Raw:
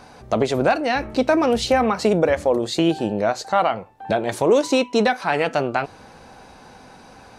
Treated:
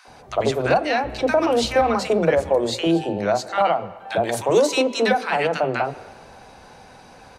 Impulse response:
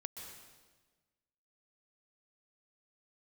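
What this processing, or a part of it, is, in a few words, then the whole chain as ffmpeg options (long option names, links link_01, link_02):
filtered reverb send: -filter_complex "[0:a]asplit=2[link_01][link_02];[link_02]highpass=frequency=200:width=0.5412,highpass=frequency=200:width=1.3066,lowpass=3200[link_03];[1:a]atrim=start_sample=2205[link_04];[link_03][link_04]afir=irnorm=-1:irlink=0,volume=-9dB[link_05];[link_01][link_05]amix=inputs=2:normalize=0,asettb=1/sr,asplit=3[link_06][link_07][link_08];[link_06]atrim=end=4.114[link_09];[link_07]atrim=start=4.11:end=5.18,asetpts=PTS-STARTPTS,afade=type=in:duration=0.004:curve=qsin,afade=type=out:start_time=1.066:duration=0.004:curve=qsin,highshelf=frequency=6600:gain=6[link_10];[link_08]atrim=start=5.176[link_11];[link_09][link_10]acrossfade=duration=0.004:curve1=hsin:curve2=qsin[link_12];[link_12][link_11]acrossfade=duration=0.004:curve1=qsin:curve2=hsin,acrossover=split=290|1200[link_13][link_14][link_15];[link_14]adelay=50[link_16];[link_13]adelay=80[link_17];[link_17][link_16][link_15]amix=inputs=3:normalize=0"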